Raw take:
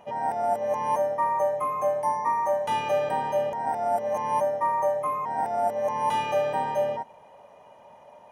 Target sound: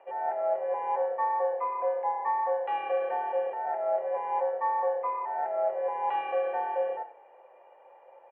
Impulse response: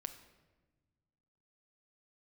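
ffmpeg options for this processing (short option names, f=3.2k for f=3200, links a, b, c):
-filter_complex "[0:a]asplit=4[a][b][c][d];[b]adelay=102,afreqshift=-33,volume=-16dB[e];[c]adelay=204,afreqshift=-66,volume=-25.4dB[f];[d]adelay=306,afreqshift=-99,volume=-34.7dB[g];[a][e][f][g]amix=inputs=4:normalize=0[h];[1:a]atrim=start_sample=2205,atrim=end_sample=3528,asetrate=57330,aresample=44100[i];[h][i]afir=irnorm=-1:irlink=0,highpass=f=490:t=q:w=0.5412,highpass=f=490:t=q:w=1.307,lowpass=f=2.6k:t=q:w=0.5176,lowpass=f=2.6k:t=q:w=0.7071,lowpass=f=2.6k:t=q:w=1.932,afreqshift=-54,volume=2dB"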